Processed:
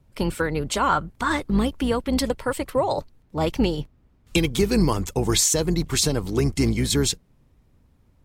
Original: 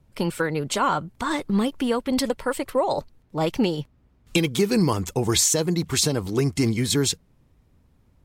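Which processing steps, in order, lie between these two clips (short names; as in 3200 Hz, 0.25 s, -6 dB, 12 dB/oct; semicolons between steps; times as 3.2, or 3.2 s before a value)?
octaver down 2 oct, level -5 dB; 0.89–1.39 dynamic EQ 1500 Hz, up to +6 dB, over -39 dBFS, Q 1.5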